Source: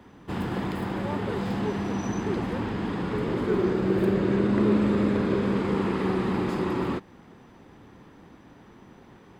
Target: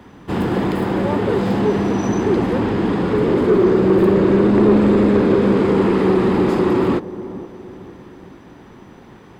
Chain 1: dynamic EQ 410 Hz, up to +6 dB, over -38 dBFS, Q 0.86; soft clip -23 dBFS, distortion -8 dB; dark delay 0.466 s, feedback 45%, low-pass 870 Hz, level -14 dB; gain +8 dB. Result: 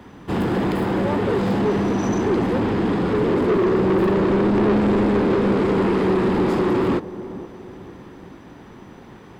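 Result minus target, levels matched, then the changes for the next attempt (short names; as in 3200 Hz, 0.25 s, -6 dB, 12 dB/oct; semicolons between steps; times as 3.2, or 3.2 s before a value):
soft clip: distortion +7 dB
change: soft clip -15 dBFS, distortion -16 dB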